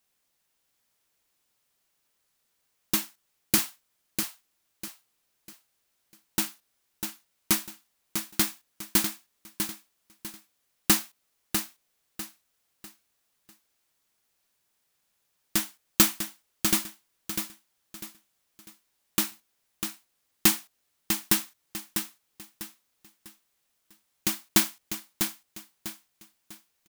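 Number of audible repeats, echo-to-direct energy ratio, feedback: 3, -6.5 dB, 33%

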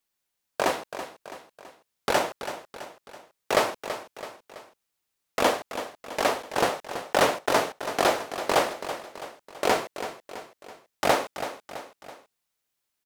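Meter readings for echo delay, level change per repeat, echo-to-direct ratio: 330 ms, -6.0 dB, -10.0 dB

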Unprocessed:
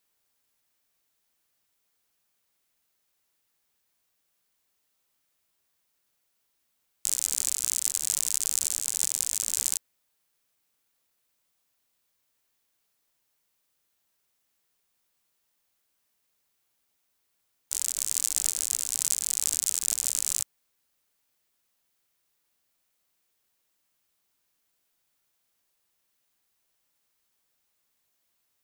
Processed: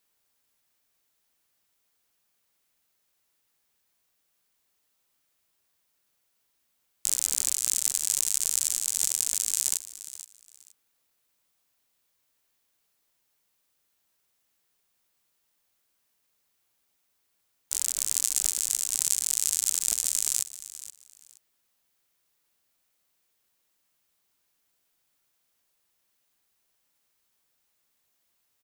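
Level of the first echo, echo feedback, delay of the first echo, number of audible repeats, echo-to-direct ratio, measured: -15.0 dB, 22%, 473 ms, 2, -15.0 dB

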